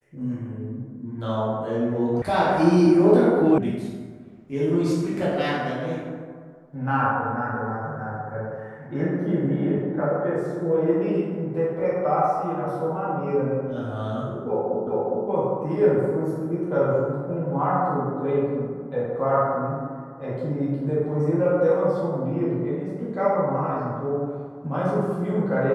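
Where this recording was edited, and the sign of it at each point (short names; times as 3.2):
2.22 sound cut off
3.58 sound cut off
14.87 repeat of the last 0.41 s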